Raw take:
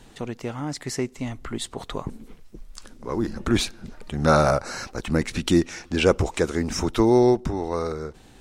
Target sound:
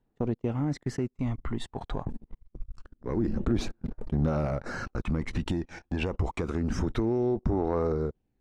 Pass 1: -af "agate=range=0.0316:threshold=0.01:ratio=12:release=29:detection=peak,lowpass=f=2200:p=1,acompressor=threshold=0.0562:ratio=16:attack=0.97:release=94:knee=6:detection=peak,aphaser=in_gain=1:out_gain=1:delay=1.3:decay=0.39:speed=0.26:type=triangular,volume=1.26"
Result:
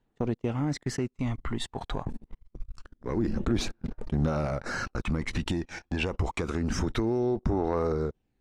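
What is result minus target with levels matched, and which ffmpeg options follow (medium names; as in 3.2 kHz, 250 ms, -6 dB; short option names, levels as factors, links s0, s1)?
2 kHz band +4.0 dB
-af "agate=range=0.0316:threshold=0.01:ratio=12:release=29:detection=peak,lowpass=f=870:p=1,acompressor=threshold=0.0562:ratio=16:attack=0.97:release=94:knee=6:detection=peak,aphaser=in_gain=1:out_gain=1:delay=1.3:decay=0.39:speed=0.26:type=triangular,volume=1.26"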